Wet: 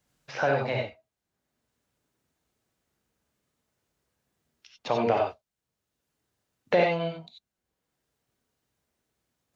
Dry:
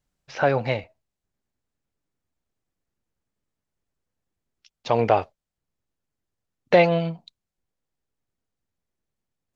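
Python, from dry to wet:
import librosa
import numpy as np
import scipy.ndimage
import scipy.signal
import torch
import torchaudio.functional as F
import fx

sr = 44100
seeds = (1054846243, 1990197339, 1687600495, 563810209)

y = fx.highpass(x, sr, hz=140.0, slope=6)
y = fx.rev_gated(y, sr, seeds[0], gate_ms=110, shape='rising', drr_db=0.0)
y = fx.band_squash(y, sr, depth_pct=40)
y = y * librosa.db_to_amplitude(-6.0)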